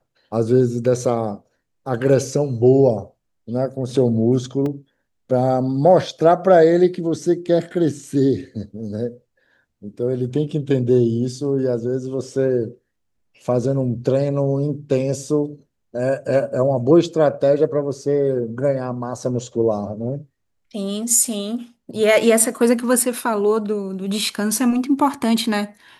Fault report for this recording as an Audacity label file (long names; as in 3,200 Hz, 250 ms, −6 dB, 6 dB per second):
4.660000	4.660000	drop-out 2.4 ms